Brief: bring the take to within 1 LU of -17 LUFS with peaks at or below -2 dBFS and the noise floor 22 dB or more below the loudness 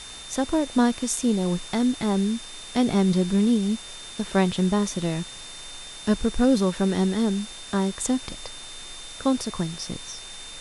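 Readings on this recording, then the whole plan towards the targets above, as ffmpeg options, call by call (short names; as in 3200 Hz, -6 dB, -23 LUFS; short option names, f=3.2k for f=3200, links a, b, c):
steady tone 3600 Hz; tone level -41 dBFS; noise floor -40 dBFS; noise floor target -47 dBFS; loudness -24.5 LUFS; peak -8.0 dBFS; loudness target -17.0 LUFS
-> -af "bandreject=f=3.6k:w=30"
-af "afftdn=nr=7:nf=-40"
-af "volume=7.5dB,alimiter=limit=-2dB:level=0:latency=1"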